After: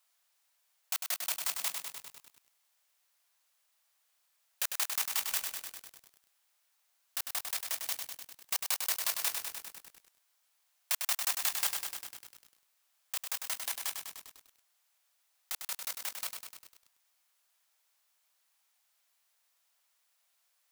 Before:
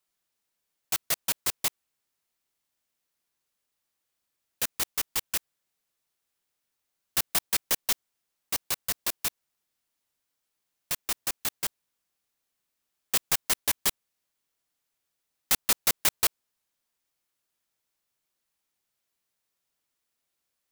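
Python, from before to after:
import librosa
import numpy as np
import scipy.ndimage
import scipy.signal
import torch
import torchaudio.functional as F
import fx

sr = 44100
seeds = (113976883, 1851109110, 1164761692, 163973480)

y = scipy.signal.sosfilt(scipy.signal.butter(4, 620.0, 'highpass', fs=sr, output='sos'), x)
y = fx.over_compress(y, sr, threshold_db=-32.0, ratio=-1.0)
y = fx.echo_crushed(y, sr, ms=100, feedback_pct=80, bits=8, wet_db=-5)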